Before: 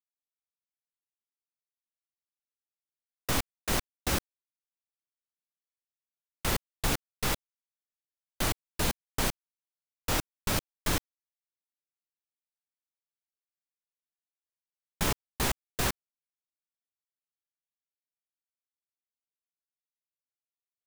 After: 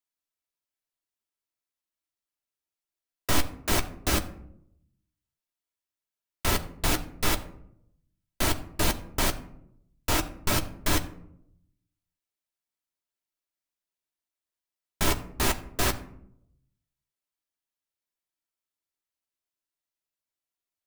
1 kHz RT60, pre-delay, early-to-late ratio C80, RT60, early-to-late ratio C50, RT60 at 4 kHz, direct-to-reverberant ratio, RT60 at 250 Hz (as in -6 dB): 0.65 s, 3 ms, 17.5 dB, 0.75 s, 15.5 dB, 0.35 s, 5.0 dB, 1.0 s